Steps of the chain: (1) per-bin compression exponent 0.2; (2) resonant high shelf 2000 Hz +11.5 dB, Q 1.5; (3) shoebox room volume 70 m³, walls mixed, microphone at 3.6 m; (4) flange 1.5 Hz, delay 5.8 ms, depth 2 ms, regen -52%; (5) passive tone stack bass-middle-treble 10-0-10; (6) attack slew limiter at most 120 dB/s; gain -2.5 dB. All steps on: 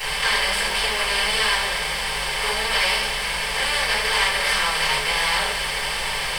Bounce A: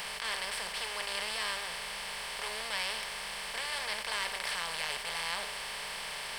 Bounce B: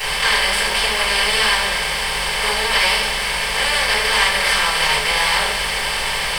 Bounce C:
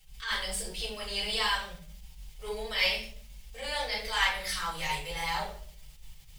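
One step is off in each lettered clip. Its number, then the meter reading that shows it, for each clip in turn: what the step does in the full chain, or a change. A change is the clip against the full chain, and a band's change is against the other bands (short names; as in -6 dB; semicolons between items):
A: 3, crest factor change +6.0 dB; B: 4, loudness change +4.0 LU; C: 1, 250 Hz band +3.5 dB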